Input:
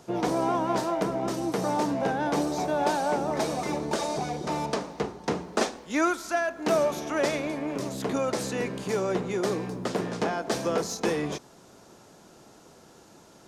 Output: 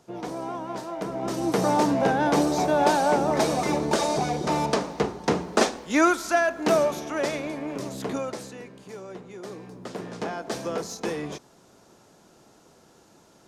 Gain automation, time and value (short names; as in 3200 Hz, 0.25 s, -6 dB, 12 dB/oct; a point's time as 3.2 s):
0.87 s -7 dB
1.55 s +5 dB
6.55 s +5 dB
7.1 s -1 dB
8.13 s -1 dB
8.64 s -12.5 dB
9.34 s -12.5 dB
10.31 s -3 dB